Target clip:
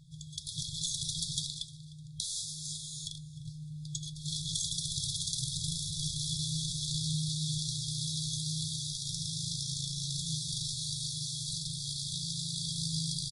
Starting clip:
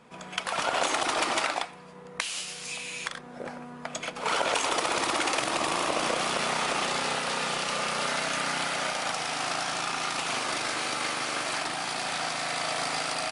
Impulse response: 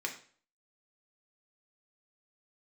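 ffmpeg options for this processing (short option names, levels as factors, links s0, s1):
-filter_complex "[0:a]afftfilt=real='re*(1-between(b*sr/4096,170,3300))':imag='im*(1-between(b*sr/4096,170,3300))':win_size=4096:overlap=0.75,flanger=delay=2.7:depth=7.9:regen=73:speed=0.17:shape=triangular,lowshelf=f=270:t=q:w=1.5:g=10.5,asplit=2[s0][s1];[s1]aecho=0:1:304|608:0.1|0.028[s2];[s0][s2]amix=inputs=2:normalize=0,volume=1.5"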